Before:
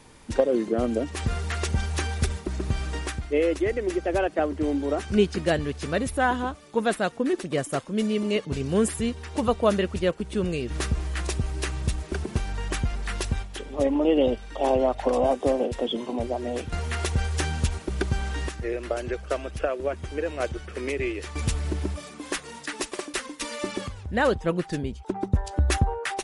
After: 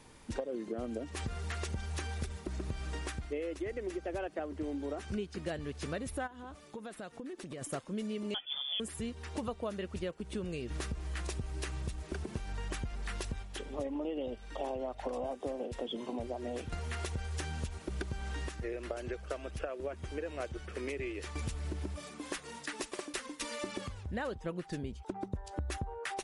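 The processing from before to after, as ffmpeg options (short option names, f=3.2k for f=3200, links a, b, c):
-filter_complex "[0:a]asplit=3[a][b][c];[a]afade=t=out:st=6.26:d=0.02[d];[b]acompressor=threshold=-34dB:ratio=20:attack=3.2:release=140:knee=1:detection=peak,afade=t=in:st=6.26:d=0.02,afade=t=out:st=7.61:d=0.02[e];[c]afade=t=in:st=7.61:d=0.02[f];[d][e][f]amix=inputs=3:normalize=0,asettb=1/sr,asplit=3[g][h][i];[g]atrim=end=8.344[j];[h]atrim=start=8.34:end=8.8,asetpts=PTS-STARTPTS,afade=t=in:d=0.004:c=qsin,afade=t=out:st=0.456:d=0.004:c=qsin,lowpass=f=3.1k:t=q:w=0.5098,lowpass=f=3.1k:t=q:w=0.6013,lowpass=f=3.1k:t=q:w=0.9,lowpass=f=3.1k:t=q:w=2.563,afreqshift=-3600[k];[i]atrim=start=8.796[l];[j][k]acrossfade=d=0.004:c1=hsin:c2=qsin[m];[m][l]acrossfade=d=0.004:c1=qsin:c2=hsin,acompressor=threshold=-29dB:ratio=6,volume=-5.5dB"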